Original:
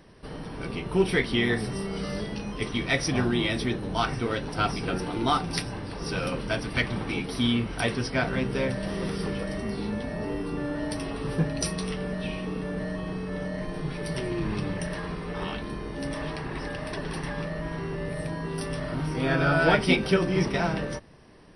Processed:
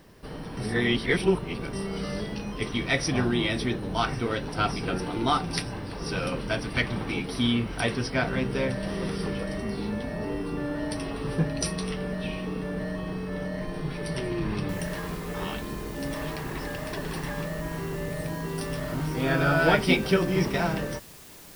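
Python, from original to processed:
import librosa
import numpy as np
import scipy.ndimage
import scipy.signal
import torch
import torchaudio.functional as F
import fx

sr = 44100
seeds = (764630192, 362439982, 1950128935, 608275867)

y = fx.noise_floor_step(x, sr, seeds[0], at_s=14.69, before_db=-68, after_db=-49, tilt_db=0.0)
y = fx.edit(y, sr, fx.reverse_span(start_s=0.57, length_s=1.16), tone=tone)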